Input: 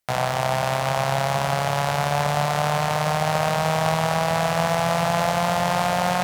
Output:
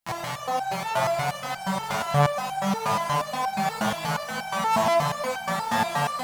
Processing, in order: harmoniser +5 st -2 dB; echo with dull and thin repeats by turns 0.313 s, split 1300 Hz, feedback 57%, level -2 dB; stepped resonator 8.4 Hz 110–780 Hz; gain +5 dB

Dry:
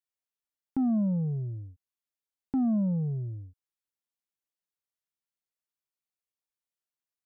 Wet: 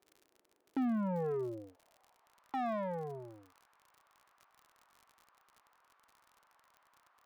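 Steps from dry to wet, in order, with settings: tilt +2.5 dB/oct; sample-and-hold 4×; band-pass sweep 350 Hz -> 1100 Hz, 1.17–2.43; overdrive pedal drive 35 dB, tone 1000 Hz, clips at -26 dBFS; crackle 54/s -48 dBFS

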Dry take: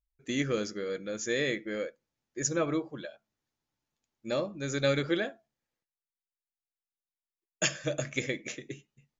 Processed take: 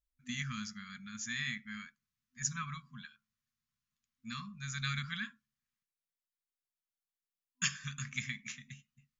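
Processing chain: FFT band-reject 250–1000 Hz; gain -4 dB

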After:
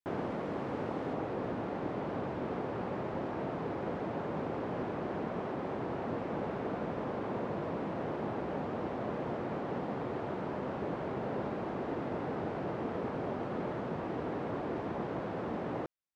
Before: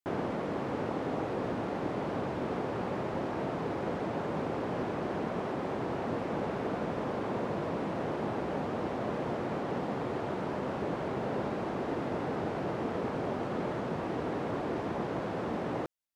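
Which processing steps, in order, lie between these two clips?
high shelf 5300 Hz -7 dB, from 1.13 s -12 dB; gain -2.5 dB

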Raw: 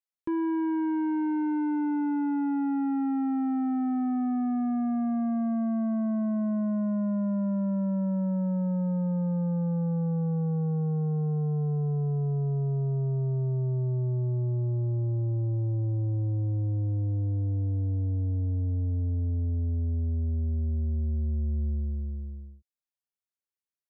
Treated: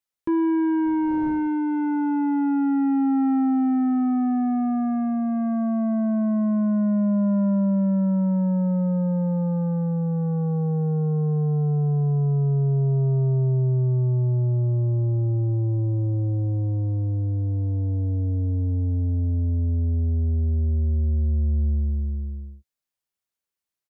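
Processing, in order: 0.85–1.47 wind noise 350 Hz -42 dBFS; doubler 15 ms -14 dB; gain +5.5 dB

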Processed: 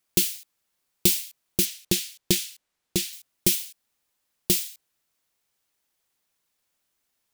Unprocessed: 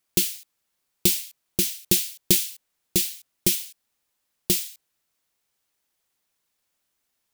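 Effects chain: 1.65–3.13 high shelf 9000 Hz -9.5 dB

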